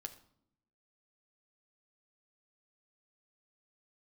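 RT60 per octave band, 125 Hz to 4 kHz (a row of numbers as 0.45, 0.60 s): 1.1, 1.1, 0.75, 0.65, 0.45, 0.45 s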